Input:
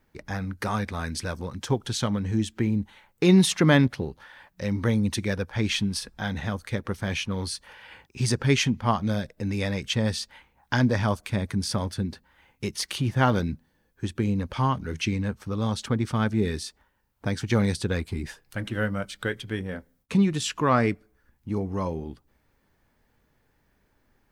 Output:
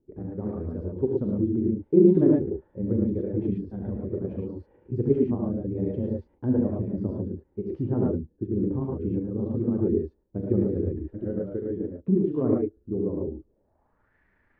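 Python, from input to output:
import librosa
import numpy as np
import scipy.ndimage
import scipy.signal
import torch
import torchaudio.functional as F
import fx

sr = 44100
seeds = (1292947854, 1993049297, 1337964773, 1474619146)

y = fx.rev_gated(x, sr, seeds[0], gate_ms=230, shape='rising', drr_db=-2.0)
y = fx.stretch_grains(y, sr, factor=0.6, grain_ms=72.0)
y = fx.filter_sweep_lowpass(y, sr, from_hz=380.0, to_hz=1900.0, start_s=13.45, end_s=14.17, q=3.2)
y = y * 10.0 ** (-5.0 / 20.0)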